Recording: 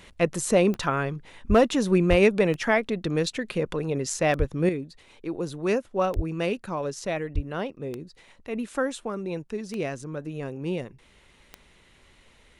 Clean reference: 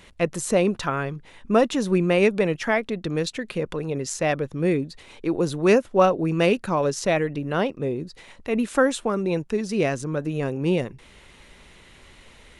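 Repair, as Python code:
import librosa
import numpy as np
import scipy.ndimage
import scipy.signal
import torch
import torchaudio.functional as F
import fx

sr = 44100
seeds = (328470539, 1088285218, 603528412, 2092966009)

y = fx.fix_declip(x, sr, threshold_db=-10.0)
y = fx.fix_declick_ar(y, sr, threshold=10.0)
y = fx.fix_deplosive(y, sr, at_s=(1.48, 2.09, 4.38, 6.15, 7.34))
y = fx.fix_level(y, sr, at_s=4.69, step_db=7.5)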